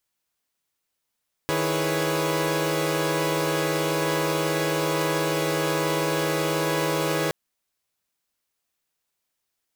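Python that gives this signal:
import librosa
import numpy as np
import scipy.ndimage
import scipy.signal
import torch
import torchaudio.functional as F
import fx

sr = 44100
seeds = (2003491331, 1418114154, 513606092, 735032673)

y = fx.chord(sr, length_s=5.82, notes=(51, 64, 68, 71, 73), wave='saw', level_db=-26.5)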